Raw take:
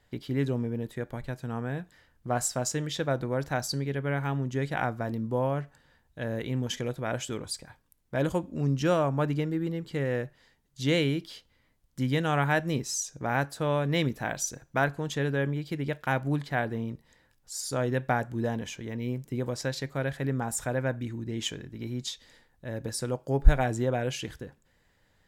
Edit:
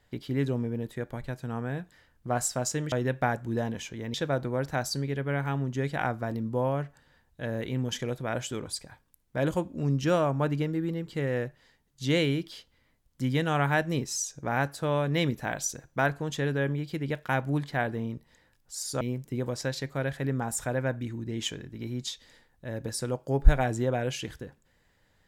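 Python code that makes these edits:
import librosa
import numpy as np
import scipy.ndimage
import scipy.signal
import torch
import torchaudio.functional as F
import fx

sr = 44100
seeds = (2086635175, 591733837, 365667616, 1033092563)

y = fx.edit(x, sr, fx.move(start_s=17.79, length_s=1.22, to_s=2.92), tone=tone)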